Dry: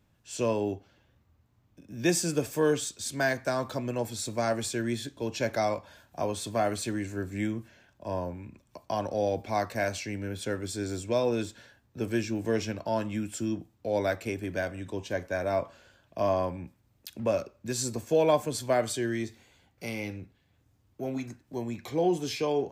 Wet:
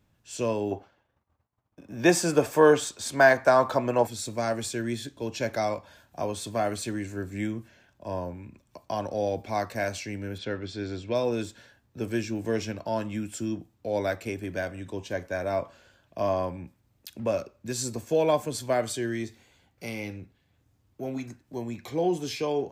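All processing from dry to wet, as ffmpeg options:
-filter_complex "[0:a]asettb=1/sr,asplit=3[a][b][c];[a]atrim=end=0.714[d];[b]atrim=start=0.71:end=4.07,asetpts=PTS-STARTPTS,afade=t=in:d=0.004:c=qsin,afade=t=out:st=3.356:d=0.004:c=qsin,agate=range=-33dB:threshold=-57dB:ratio=3:release=100:detection=peak,equalizer=f=910:t=o:w=2.3:g=12.5[e];[c]atrim=start=4.066[f];[d][e]acrossfade=d=0.004:c1=hsin:c2=qsin[g];[g][f]acrossfade=d=0.004:c1=qsin:c2=hsin,asettb=1/sr,asplit=3[h][i][j];[h]atrim=end=10.384[k];[i]atrim=start=10.38:end=11.15,asetpts=PTS-STARTPTS,afade=t=in:d=0.004:c=qsin,afade=t=out:st=0.766:d=0.004:c=qsin,lowpass=f=4k:w=0.5412,lowpass=f=4k:w=1.3066,aemphasis=mode=production:type=50fm[l];[j]atrim=start=11.146[m];[k][l]acrossfade=d=0.004:c1=hsin:c2=qsin[n];[n][m]acrossfade=d=0.004:c1=qsin:c2=hsin"

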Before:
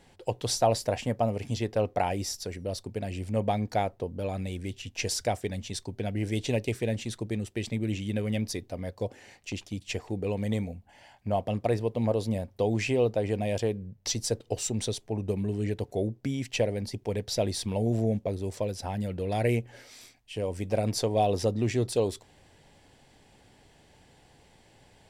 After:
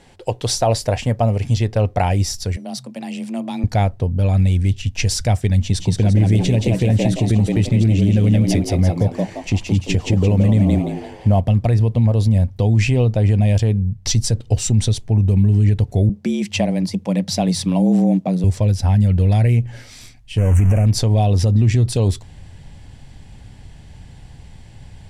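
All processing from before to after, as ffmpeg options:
-filter_complex "[0:a]asettb=1/sr,asplit=3[a][b][c];[a]atrim=end=2.564[d];[b]atrim=start=2.56:end=3.64,asetpts=PTS-STARTPTS,afade=t=in:d=0.004:c=qsin,afade=t=out:st=1.076:d=0.004:c=qsin,afreqshift=120,equalizer=f=350:w=1.3:g=-10.5,acrossover=split=420|3000[e][f][g];[f]acompressor=threshold=-39dB:ratio=6:attack=3.2:release=140:knee=2.83:detection=peak[h];[e][h][g]amix=inputs=3:normalize=0[i];[c]atrim=start=3.636[j];[d][i]acrossfade=d=0.004:c1=hsin:c2=qsin[k];[k][j]acrossfade=d=0.004:c1=qsin:c2=hsin,asettb=1/sr,asplit=3[l][m][n];[l]atrim=end=5.624[o];[m]atrim=start=5.62:end=11.4,asetpts=PTS-STARTPTS,afade=t=in:d=0.004:c=qsin,afade=t=out:st=5.776:d=0.004:c=qsin,acrusher=bits=9:mode=log:mix=0:aa=0.000001,equalizer=f=400:w=0.52:g=5.5,asplit=6[p][q][r][s][t][u];[q]adelay=172,afreqshift=80,volume=-3.5dB[v];[r]adelay=344,afreqshift=160,volume=-11.2dB[w];[s]adelay=516,afreqshift=240,volume=-19dB[x];[t]adelay=688,afreqshift=320,volume=-26.7dB[y];[u]adelay=860,afreqshift=400,volume=-34.5dB[z];[p][v][w][x][y][z]amix=inputs=6:normalize=0,atrim=end_sample=254898[aa];[n]atrim=start=11.396[ab];[o][aa]acrossfade=d=0.004:c1=hsin:c2=qsin[ac];[ac][ab]acrossfade=d=0.004:c1=qsin:c2=hsin,asettb=1/sr,asplit=3[ad][ae][af];[ad]atrim=end=16.094[ag];[ae]atrim=start=16.09:end=18.44,asetpts=PTS-STARTPTS,afade=t=in:d=0.004:c=qsin,afade=t=out:st=2.346:d=0.004:c=qsin,equalizer=f=230:w=4.3:g=-4.5,afreqshift=86[ah];[af]atrim=start=18.436[ai];[ag][ah]acrossfade=d=0.004:c1=hsin:c2=qsin[aj];[aj][ai]acrossfade=d=0.004:c1=qsin:c2=hsin,asettb=1/sr,asplit=3[ak][al][am];[ak]atrim=end=20.384[an];[al]atrim=start=20.38:end=20.86,asetpts=PTS-STARTPTS,afade=t=in:d=0.004:c=qsin,afade=t=out:st=0.476:d=0.004:c=qsin,aeval=exprs='val(0)+0.5*0.0237*sgn(val(0))':c=same,asuperstop=centerf=4200:order=8:qfactor=1.3[ao];[am]atrim=start=20.856[ap];[an][ao]acrossfade=d=0.004:c1=hsin:c2=qsin[aq];[aq][ap]acrossfade=d=0.004:c1=qsin:c2=hsin,lowpass=12k,asubboost=boost=7:cutoff=150,alimiter=limit=-16dB:level=0:latency=1:release=68,volume=9dB"

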